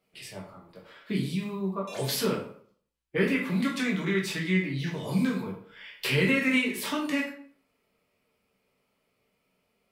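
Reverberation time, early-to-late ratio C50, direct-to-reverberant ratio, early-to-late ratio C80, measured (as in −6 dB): 0.55 s, 6.0 dB, −3.5 dB, 10.0 dB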